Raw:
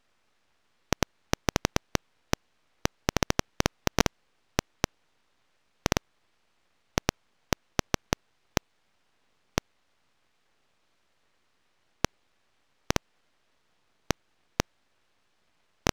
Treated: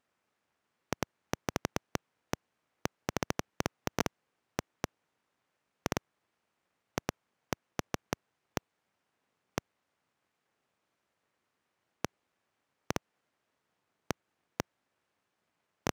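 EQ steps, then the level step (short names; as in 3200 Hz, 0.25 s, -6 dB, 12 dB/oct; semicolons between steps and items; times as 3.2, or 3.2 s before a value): HPF 97 Hz 12 dB/oct; bell 4000 Hz -6 dB 1.4 oct; -6.0 dB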